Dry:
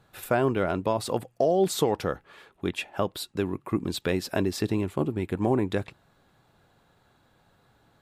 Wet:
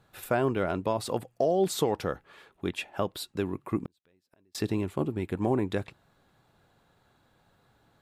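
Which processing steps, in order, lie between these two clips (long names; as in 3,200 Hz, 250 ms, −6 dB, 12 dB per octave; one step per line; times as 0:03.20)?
0:03.85–0:04.55: gate with flip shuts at −24 dBFS, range −39 dB
level −2.5 dB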